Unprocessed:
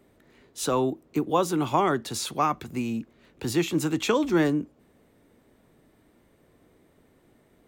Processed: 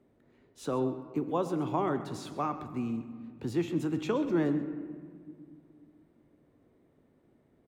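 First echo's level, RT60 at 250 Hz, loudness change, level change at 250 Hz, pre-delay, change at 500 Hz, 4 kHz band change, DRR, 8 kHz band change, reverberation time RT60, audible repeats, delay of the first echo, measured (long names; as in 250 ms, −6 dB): −15.0 dB, 3.1 s, −6.5 dB, −4.5 dB, 3 ms, −6.0 dB, −14.5 dB, 9.0 dB, −17.5 dB, 1.9 s, 1, 131 ms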